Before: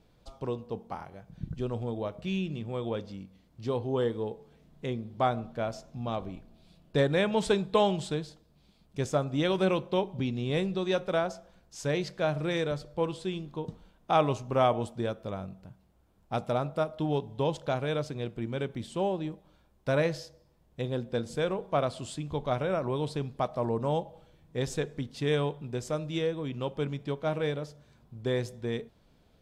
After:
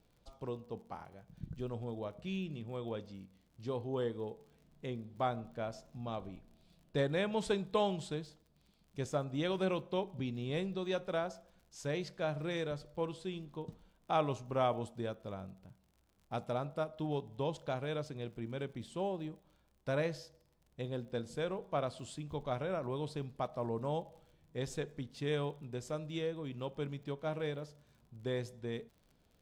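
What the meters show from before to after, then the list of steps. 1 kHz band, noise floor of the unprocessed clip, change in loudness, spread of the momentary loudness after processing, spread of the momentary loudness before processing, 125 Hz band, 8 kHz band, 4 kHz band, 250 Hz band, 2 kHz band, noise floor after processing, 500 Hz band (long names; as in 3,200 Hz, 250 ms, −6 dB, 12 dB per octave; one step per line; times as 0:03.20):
−7.5 dB, −64 dBFS, −7.5 dB, 13 LU, 13 LU, −7.5 dB, −7.5 dB, −7.5 dB, −7.5 dB, −7.5 dB, −71 dBFS, −7.5 dB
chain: surface crackle 49 per second −48 dBFS
level −7.5 dB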